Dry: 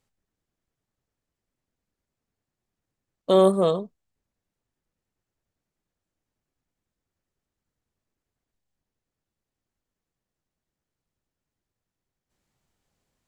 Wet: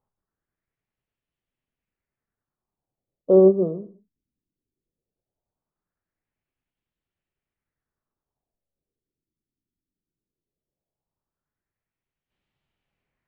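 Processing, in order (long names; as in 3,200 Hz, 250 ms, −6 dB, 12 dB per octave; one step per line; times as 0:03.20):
reverb whose tail is shaped and stops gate 230 ms falling, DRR 10.5 dB
auto-filter low-pass sine 0.18 Hz 280–3,000 Hz
expander for the loud parts 1.5 to 1, over −22 dBFS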